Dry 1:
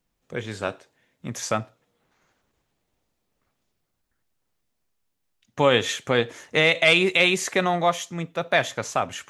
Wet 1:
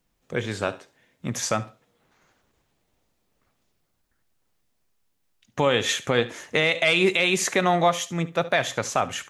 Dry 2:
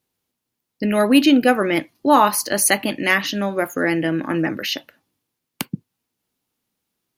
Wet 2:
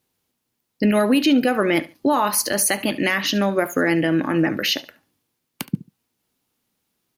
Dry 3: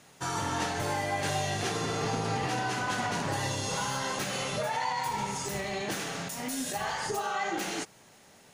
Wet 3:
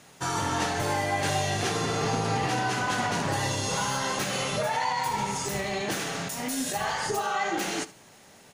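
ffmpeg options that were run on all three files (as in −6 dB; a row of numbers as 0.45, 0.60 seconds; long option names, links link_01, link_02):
-af "alimiter=limit=-12.5dB:level=0:latency=1:release=133,aecho=1:1:71|142:0.126|0.0277,volume=3.5dB"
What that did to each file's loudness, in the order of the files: −1.5, −1.5, +3.5 LU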